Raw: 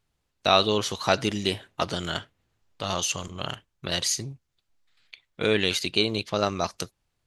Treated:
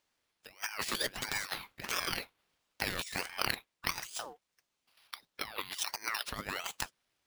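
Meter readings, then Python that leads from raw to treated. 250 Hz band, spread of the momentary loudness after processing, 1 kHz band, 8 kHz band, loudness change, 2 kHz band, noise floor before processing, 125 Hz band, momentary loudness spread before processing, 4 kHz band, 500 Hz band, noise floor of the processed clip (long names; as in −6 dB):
−18.0 dB, 8 LU, −11.5 dB, −9.0 dB, −10.5 dB, −5.0 dB, −78 dBFS, −17.0 dB, 13 LU, −11.0 dB, −19.0 dB, −85 dBFS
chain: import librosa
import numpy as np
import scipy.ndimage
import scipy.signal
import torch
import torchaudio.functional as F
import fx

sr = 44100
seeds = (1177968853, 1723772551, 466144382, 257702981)

y = fx.highpass(x, sr, hz=760.0, slope=6)
y = fx.over_compress(y, sr, threshold_db=-34.0, ratio=-0.5)
y = np.repeat(scipy.signal.resample_poly(y, 1, 3), 3)[:len(y)]
y = fx.ring_lfo(y, sr, carrier_hz=1300.0, swing_pct=55, hz=1.5)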